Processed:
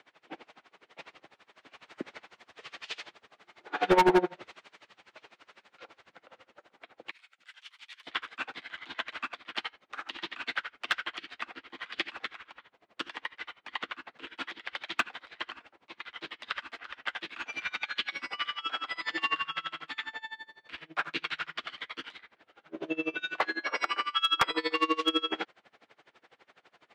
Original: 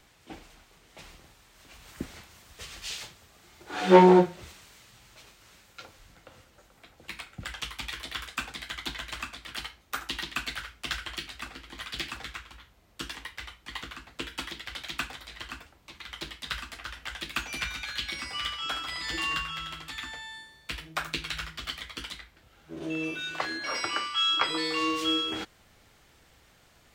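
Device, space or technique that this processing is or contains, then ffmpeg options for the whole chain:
helicopter radio: -filter_complex "[0:a]highpass=350,lowpass=2.8k,aeval=exprs='val(0)*pow(10,-25*(0.5-0.5*cos(2*PI*12*n/s))/20)':c=same,asoftclip=type=hard:threshold=-24.5dB,asettb=1/sr,asplit=3[a][b][c];[a]atrim=end=7.114[d];[b]atrim=start=7.11:end=8.07,asetpts=PTS-STARTPTS,afade=t=in:d=0.004:c=qsin,afade=t=out:st=0.956:d=0.004:c=qsin,aderivative[e];[c]atrim=start=8.066[f];[d][e]acrossfade=d=0.004:c1=hsin:c2=qsin[g];[g][f]acrossfade=d=0.004:c1=qsin:c2=hsin,volume=8dB"

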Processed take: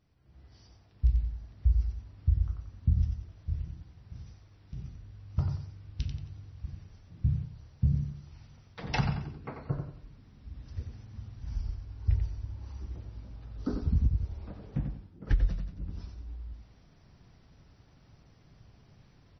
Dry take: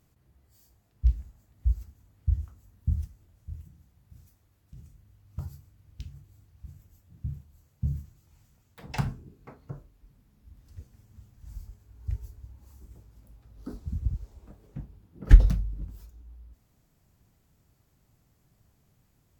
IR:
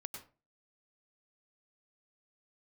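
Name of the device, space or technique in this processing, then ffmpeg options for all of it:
low-bitrate web radio: -filter_complex "[0:a]asplit=3[a][b][c];[a]afade=t=out:st=6.65:d=0.02[d];[b]equalizer=f=81:t=o:w=2.7:g=-5.5,afade=t=in:st=6.65:d=0.02,afade=t=out:st=7.23:d=0.02[e];[c]afade=t=in:st=7.23:d=0.02[f];[d][e][f]amix=inputs=3:normalize=0,aecho=1:1:90|180|270|360:0.501|0.17|0.0579|0.0197,dynaudnorm=f=220:g=3:m=12dB,alimiter=limit=-11dB:level=0:latency=1:release=385,volume=-4.5dB" -ar 24000 -c:a libmp3lame -b:a 24k

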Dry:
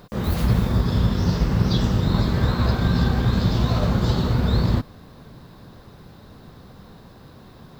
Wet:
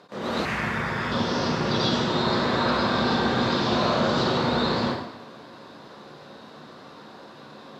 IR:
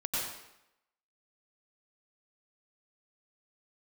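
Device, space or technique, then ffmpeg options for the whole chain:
supermarket ceiling speaker: -filter_complex "[0:a]highpass=320,lowpass=6.4k[a];[1:a]atrim=start_sample=2205[b];[a][b]afir=irnorm=-1:irlink=0,asettb=1/sr,asplit=3[c][d][e];[c]atrim=end=0.454[f];[d]atrim=start=0.45:end=1.12,asetpts=PTS-STARTPTS,afade=t=in:d=0.004:c=qsin,afade=t=out:st=0.666:d=0.004:c=qsin,equalizer=f=250:t=o:w=1:g=-6,equalizer=f=500:t=o:w=1:g=-6,equalizer=f=1k:t=o:w=1:g=-3,equalizer=f=2k:t=o:w=1:g=11,equalizer=f=4k:t=o:w=1:g=-12[g];[e]atrim=start=1.116[h];[f][g]acrossfade=d=0.004:c1=hsin:c2=qsin[i];[i][h]acrossfade=d=0.004:c1=qsin:c2=hsin,acrossover=split=7800[j][k];[k]acompressor=threshold=-59dB:ratio=4:attack=1:release=60[l];[j][l]amix=inputs=2:normalize=0"

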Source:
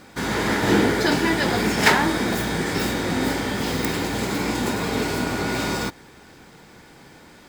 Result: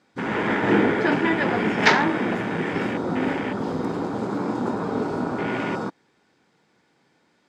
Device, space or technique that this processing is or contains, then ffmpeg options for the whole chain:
over-cleaned archive recording: -af "highpass=140,lowpass=7.1k,afwtdn=0.0447"

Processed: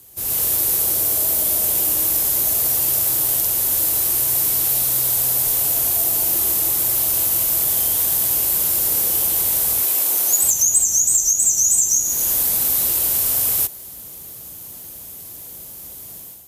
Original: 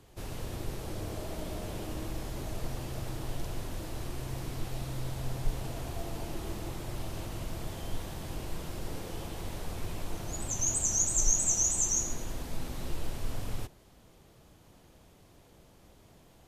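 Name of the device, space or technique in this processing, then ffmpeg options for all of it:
FM broadcast chain: -filter_complex "[0:a]highpass=51,dynaudnorm=f=110:g=5:m=10.5dB,acrossover=split=390|6300[a][b][c];[a]acompressor=threshold=-38dB:ratio=4[d];[b]acompressor=threshold=-32dB:ratio=4[e];[c]acompressor=threshold=-30dB:ratio=4[f];[d][e][f]amix=inputs=3:normalize=0,aemphasis=mode=production:type=50fm,alimiter=limit=-13.5dB:level=0:latency=1:release=360,asoftclip=type=hard:threshold=-16.5dB,lowpass=f=15k:w=0.5412,lowpass=f=15k:w=1.3066,aemphasis=mode=production:type=50fm,asettb=1/sr,asplit=3[g][h][i];[g]atrim=end=9.834[j];[h]atrim=start=9.83:end=10.43,asetpts=PTS-STARTPTS,afade=t=in:d=0.004:c=qsin,afade=t=out:st=0.596:d=0.004:c=qsin,highpass=260[k];[i]atrim=start=10.426[l];[j][k]acrossfade=d=0.004:c1=hsin:c2=qsin[m];[m][l]acrossfade=d=0.004:c1=qsin:c2=hsin"

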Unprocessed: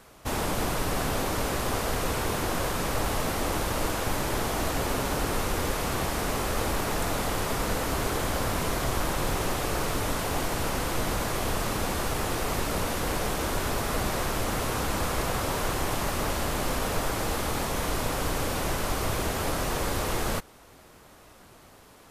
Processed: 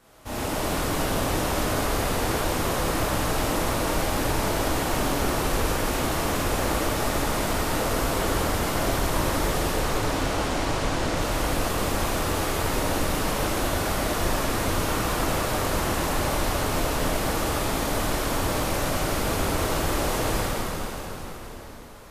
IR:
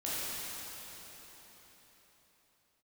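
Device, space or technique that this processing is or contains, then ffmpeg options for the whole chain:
cathedral: -filter_complex "[0:a]asettb=1/sr,asplit=3[a][b][c];[a]atrim=end=9.684[d];[b]atrim=start=9.68:end=11.16,asetpts=PTS-STARTPTS,afade=t=in:d=0.004:c=qsin,afade=t=out:st=1.476:d=0.004:c=qsin,lowpass=7.5k[e];[c]atrim=start=11.156[f];[d][e]acrossfade=d=0.004:c1=hsin:c2=qsin[g];[g][f]acrossfade=d=0.004:c1=qsin:c2=hsin[h];[1:a]atrim=start_sample=2205[i];[h][i]afir=irnorm=-1:irlink=0,volume=-3dB"

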